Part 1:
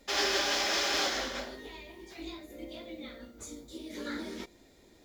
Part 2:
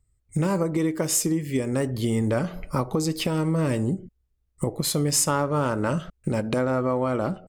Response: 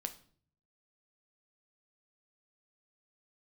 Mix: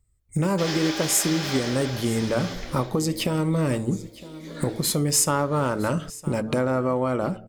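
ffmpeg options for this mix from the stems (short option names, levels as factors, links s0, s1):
-filter_complex "[0:a]adelay=500,volume=0.841,asplit=2[s0][s1];[s1]volume=0.447[s2];[1:a]highshelf=f=12000:g=4.5,bandreject=f=110.5:t=h:w=4,bandreject=f=221:t=h:w=4,bandreject=f=331.5:t=h:w=4,bandreject=f=442:t=h:w=4,volume=1.06,asplit=2[s3][s4];[s4]volume=0.112[s5];[s2][s5]amix=inputs=2:normalize=0,aecho=0:1:961:1[s6];[s0][s3][s6]amix=inputs=3:normalize=0"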